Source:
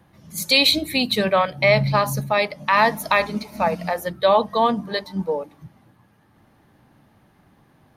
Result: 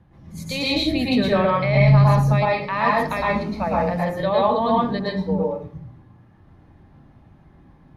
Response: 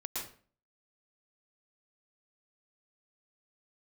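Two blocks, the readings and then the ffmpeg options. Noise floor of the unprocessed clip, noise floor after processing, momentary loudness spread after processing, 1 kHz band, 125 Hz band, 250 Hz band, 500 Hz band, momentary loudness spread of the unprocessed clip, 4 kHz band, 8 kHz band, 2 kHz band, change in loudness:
-58 dBFS, -52 dBFS, 10 LU, -1.0 dB, +9.5 dB, +4.5 dB, -0.5 dB, 11 LU, -7.0 dB, under -10 dB, -4.0 dB, 0.0 dB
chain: -filter_complex "[0:a]alimiter=limit=-9dB:level=0:latency=1,aemphasis=mode=reproduction:type=bsi[a];[1:a]atrim=start_sample=2205[b];[a][b]afir=irnorm=-1:irlink=0,volume=-1.5dB"

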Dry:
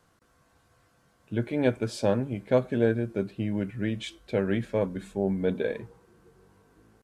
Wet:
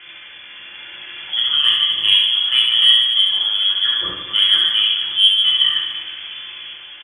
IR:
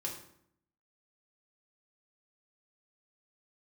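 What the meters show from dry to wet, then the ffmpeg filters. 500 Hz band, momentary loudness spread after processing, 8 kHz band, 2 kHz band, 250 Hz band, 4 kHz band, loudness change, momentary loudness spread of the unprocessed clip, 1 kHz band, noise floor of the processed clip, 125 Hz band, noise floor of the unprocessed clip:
under -15 dB, 19 LU, n/a, +13.0 dB, under -15 dB, +36.5 dB, +15.5 dB, 6 LU, +4.5 dB, -38 dBFS, under -15 dB, -66 dBFS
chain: -filter_complex "[0:a]aeval=exprs='val(0)+0.5*0.0141*sgn(val(0))':c=same,equalizer=f=1.9k:w=7:g=4,lowpass=f=3k:t=q:w=0.5098,lowpass=f=3k:t=q:w=0.6013,lowpass=f=3k:t=q:w=0.9,lowpass=f=3k:t=q:w=2.563,afreqshift=-3500,highpass=46,equalizer=f=600:w=0.62:g=-6.5,bandreject=f=1.1k:w=11[a];[1:a]atrim=start_sample=2205,afade=t=out:st=0.15:d=0.01,atrim=end_sample=7056[b];[a][b]afir=irnorm=-1:irlink=0,dynaudnorm=f=230:g=7:m=4.5dB,asoftclip=type=tanh:threshold=-6.5dB,aecho=1:1:70|150.5|243.1|349.5|472:0.631|0.398|0.251|0.158|0.1,volume=5dB"

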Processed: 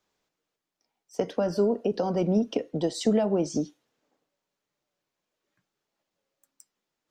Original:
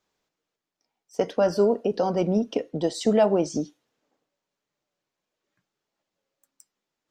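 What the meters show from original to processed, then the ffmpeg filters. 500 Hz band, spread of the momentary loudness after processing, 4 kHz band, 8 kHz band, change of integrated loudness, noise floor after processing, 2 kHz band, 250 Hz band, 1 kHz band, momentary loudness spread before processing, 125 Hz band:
-4.0 dB, 8 LU, -1.5 dB, -1.5 dB, -3.0 dB, -85 dBFS, -5.5 dB, -0.5 dB, -5.5 dB, 9 LU, 0.0 dB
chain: -filter_complex "[0:a]acrossover=split=340[a][b];[b]acompressor=threshold=-27dB:ratio=4[c];[a][c]amix=inputs=2:normalize=0"

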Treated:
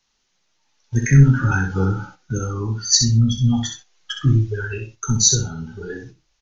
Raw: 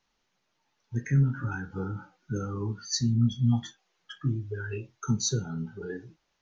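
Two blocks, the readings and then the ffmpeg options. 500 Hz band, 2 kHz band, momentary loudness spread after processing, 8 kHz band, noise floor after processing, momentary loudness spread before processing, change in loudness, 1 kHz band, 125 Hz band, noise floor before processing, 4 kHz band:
+8.5 dB, +13.5 dB, 18 LU, n/a, -69 dBFS, 14 LU, +11.5 dB, +11.0 dB, +11.0 dB, -77 dBFS, +14.5 dB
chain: -filter_complex "[0:a]acrossover=split=330|760[a][b][c];[a]asubboost=boost=5:cutoff=74[d];[c]volume=18.5dB,asoftclip=hard,volume=-18.5dB[e];[d][b][e]amix=inputs=3:normalize=0,acontrast=84,crystalizer=i=3.5:c=0,dynaudnorm=f=600:g=3:m=5dB,aresample=16000,aresample=44100,lowshelf=f=160:g=3.5,aecho=1:1:63|126|189:0.501|0.0802|0.0128,agate=range=-7dB:threshold=-39dB:ratio=16:detection=peak"

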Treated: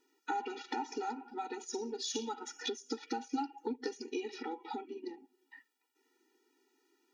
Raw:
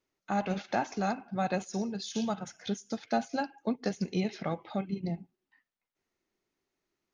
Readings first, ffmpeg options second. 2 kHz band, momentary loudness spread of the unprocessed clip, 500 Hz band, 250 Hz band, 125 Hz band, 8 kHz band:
-7.0 dB, 5 LU, -5.5 dB, -9.0 dB, under -25 dB, n/a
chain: -af "aeval=exprs='0.168*(cos(1*acos(clip(val(0)/0.168,-1,1)))-cos(1*PI/2))+0.00531*(cos(4*acos(clip(val(0)/0.168,-1,1)))-cos(4*PI/2))':c=same,acompressor=threshold=-43dB:ratio=6,afftfilt=real='re*eq(mod(floor(b*sr/1024/250),2),1)':imag='im*eq(mod(floor(b*sr/1024/250),2),1)':win_size=1024:overlap=0.75,volume=12.5dB"

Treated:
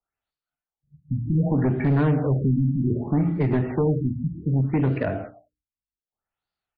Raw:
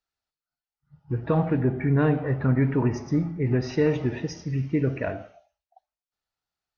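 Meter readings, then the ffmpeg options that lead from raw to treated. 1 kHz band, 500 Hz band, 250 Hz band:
0.0 dB, -0.5 dB, +2.0 dB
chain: -filter_complex "[0:a]agate=range=-7dB:threshold=-44dB:ratio=16:detection=peak,bandreject=f=60:t=h:w=6,bandreject=f=120:t=h:w=6,bandreject=f=180:t=h:w=6,bandreject=f=240:t=h:w=6,bandreject=f=300:t=h:w=6,bandreject=f=360:t=h:w=6,bandreject=f=420:t=h:w=6,bandreject=f=480:t=h:w=6,acrossover=split=120|270|1700[a][b][c][d];[a]acompressor=threshold=-43dB:ratio=4[e];[b]acompressor=threshold=-26dB:ratio=4[f];[c]acompressor=threshold=-33dB:ratio=4[g];[d]acompressor=threshold=-51dB:ratio=4[h];[e][f][g][h]amix=inputs=4:normalize=0,asplit=2[i][j];[j]acrusher=bits=3:mix=0:aa=0.000001,volume=-8dB[k];[i][k]amix=inputs=2:normalize=0,asoftclip=type=hard:threshold=-24.5dB,aecho=1:1:111:0.075,afftfilt=real='re*lt(b*sr/1024,260*pow(5100/260,0.5+0.5*sin(2*PI*0.65*pts/sr)))':imag='im*lt(b*sr/1024,260*pow(5100/260,0.5+0.5*sin(2*PI*0.65*pts/sr)))':win_size=1024:overlap=0.75,volume=8.5dB"

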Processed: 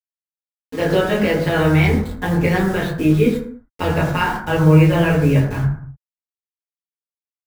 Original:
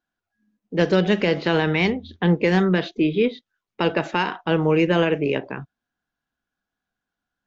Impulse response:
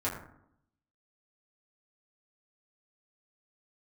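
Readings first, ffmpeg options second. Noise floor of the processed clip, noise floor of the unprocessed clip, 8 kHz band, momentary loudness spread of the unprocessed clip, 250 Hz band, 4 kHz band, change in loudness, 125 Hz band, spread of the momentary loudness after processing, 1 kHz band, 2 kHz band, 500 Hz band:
under -85 dBFS, under -85 dBFS, n/a, 6 LU, +4.0 dB, -0.5 dB, +4.0 dB, +9.5 dB, 10 LU, +3.5 dB, +3.0 dB, +2.0 dB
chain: -filter_complex "[0:a]acrusher=bits=5:mix=0:aa=0.000001,asubboost=boost=9.5:cutoff=110[a];[1:a]atrim=start_sample=2205,afade=t=out:st=0.37:d=0.01,atrim=end_sample=16758[b];[a][b]afir=irnorm=-1:irlink=0,volume=-2.5dB"

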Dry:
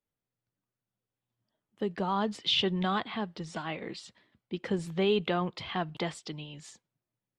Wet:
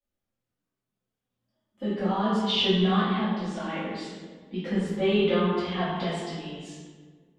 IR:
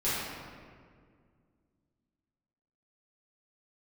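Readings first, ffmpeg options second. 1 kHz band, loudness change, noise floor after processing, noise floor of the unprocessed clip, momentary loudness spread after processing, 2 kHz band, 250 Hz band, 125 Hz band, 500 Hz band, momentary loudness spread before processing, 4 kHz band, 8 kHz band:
+3.5 dB, +5.0 dB, under -85 dBFS, under -85 dBFS, 16 LU, +3.5 dB, +7.5 dB, +6.5 dB, +5.0 dB, 15 LU, +3.0 dB, n/a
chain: -filter_complex "[0:a]flanger=delay=3.3:depth=1.4:regen=-31:speed=0.58:shape=sinusoidal[a];[1:a]atrim=start_sample=2205,asetrate=61740,aresample=44100[b];[a][b]afir=irnorm=-1:irlink=0"

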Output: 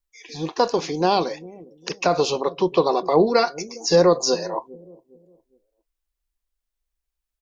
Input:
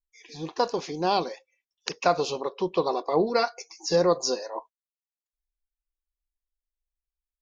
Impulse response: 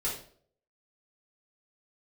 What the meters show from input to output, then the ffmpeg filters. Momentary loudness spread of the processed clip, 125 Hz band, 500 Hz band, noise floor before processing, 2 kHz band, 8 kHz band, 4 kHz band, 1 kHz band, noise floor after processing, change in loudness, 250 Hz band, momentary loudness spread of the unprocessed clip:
15 LU, +7.0 dB, +6.0 dB, under -85 dBFS, +4.5 dB, n/a, +5.5 dB, +4.5 dB, -83 dBFS, +5.5 dB, +7.0 dB, 14 LU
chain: -filter_complex "[0:a]acrossover=split=460[a][b];[a]aecho=1:1:409|818|1227:0.188|0.0584|0.0181[c];[b]alimiter=limit=-18dB:level=0:latency=1:release=37[d];[c][d]amix=inputs=2:normalize=0,volume=7dB"

